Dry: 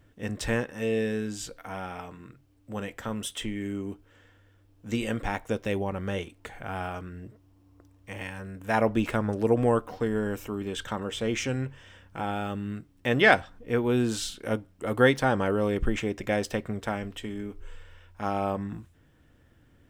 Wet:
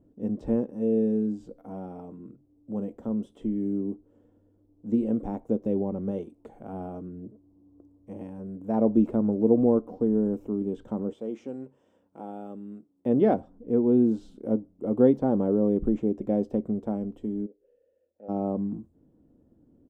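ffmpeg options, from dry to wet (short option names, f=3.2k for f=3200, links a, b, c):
-filter_complex "[0:a]asettb=1/sr,asplit=3[a][b][c];[a]atrim=end=6.114[d];[b]atrim=start=6.11:end=6.73,asetpts=PTS-STARTPTS,afade=t=in:d=0.004:c=qsin,afade=t=out:st=0.616:d=0.004:c=qsin,tiltshelf=f=640:g=-3.5[e];[c]atrim=start=6.726[f];[d][e]acrossfade=d=0.004:c1=hsin:c2=qsin[g];[g][f]acrossfade=d=0.004:c1=qsin:c2=hsin,asettb=1/sr,asplit=3[h][i][j];[h]atrim=end=11.134[k];[i]atrim=start=11.13:end=13.06,asetpts=PTS-STARTPTS,afade=t=in:d=0.004:c=qsin,afade=t=out:st=1.926:d=0.004:c=qsin,highpass=f=790:p=1[l];[j]atrim=start=13.056[m];[k][l]acrossfade=d=0.004:c1=hsin:c2=qsin[n];[n][m]acrossfade=d=0.004:c1=qsin:c2=hsin,asplit=3[o][p][q];[o]afade=t=out:st=17.45:d=0.02[r];[p]asplit=3[s][t][u];[s]bandpass=f=530:t=q:w=8,volume=0dB[v];[t]bandpass=f=1.84k:t=q:w=8,volume=-6dB[w];[u]bandpass=f=2.48k:t=q:w=8,volume=-9dB[x];[v][w][x]amix=inputs=3:normalize=0,afade=t=in:st=17.45:d=0.02,afade=t=out:st=18.28:d=0.02[y];[q]afade=t=in:st=18.28:d=0.02[z];[r][y][z]amix=inputs=3:normalize=0,firequalizer=gain_entry='entry(110,0);entry(210,14);entry(1700,-19);entry(7400,-6)':delay=0.05:min_phase=1,acrossover=split=5000[aa][ab];[ab]acompressor=threshold=-60dB:ratio=4:attack=1:release=60[ac];[aa][ac]amix=inputs=2:normalize=0,highshelf=f=3.4k:g=-7.5,volume=-7dB"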